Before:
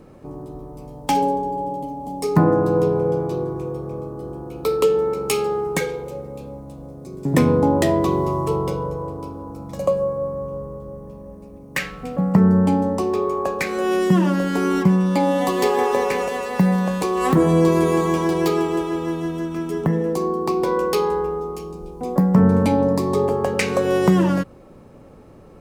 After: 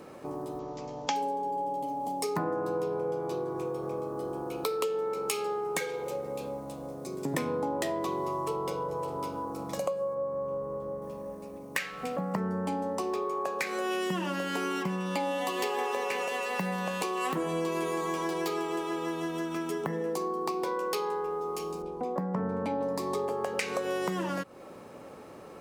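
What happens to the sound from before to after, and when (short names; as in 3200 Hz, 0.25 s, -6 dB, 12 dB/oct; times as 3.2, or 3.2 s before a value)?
0.59–1.16 careless resampling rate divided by 3×, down none, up filtered
8.32–8.89 echo throw 0.56 s, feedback 15%, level -12 dB
10.14–11.02 high shelf 2800 Hz -8.5 dB
13.9–17.89 bell 2800 Hz +7 dB 0.3 oct
21.82–22.81 LPF 1500 Hz 6 dB/oct
whole clip: HPF 650 Hz 6 dB/oct; compressor 4:1, threshold -36 dBFS; gain +5 dB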